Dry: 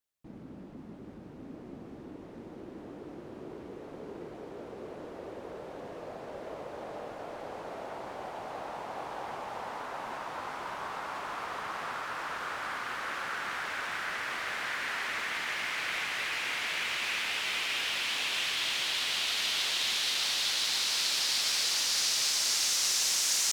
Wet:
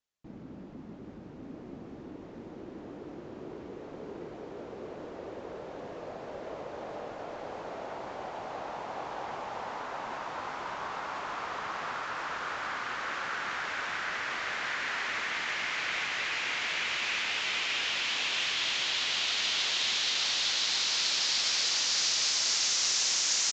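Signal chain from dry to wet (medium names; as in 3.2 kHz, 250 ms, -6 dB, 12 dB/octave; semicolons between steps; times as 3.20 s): resampled via 16 kHz; trim +1 dB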